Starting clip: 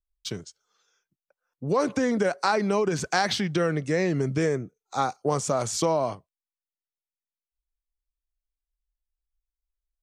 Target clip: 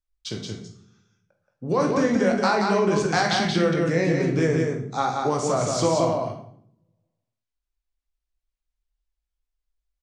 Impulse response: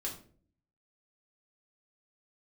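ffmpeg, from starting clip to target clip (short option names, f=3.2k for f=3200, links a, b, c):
-filter_complex "[0:a]lowpass=7k,aecho=1:1:176:0.631,asplit=2[a][b];[1:a]atrim=start_sample=2205,asetrate=27783,aresample=44100,adelay=18[c];[b][c]afir=irnorm=-1:irlink=0,volume=-6.5dB[d];[a][d]amix=inputs=2:normalize=0"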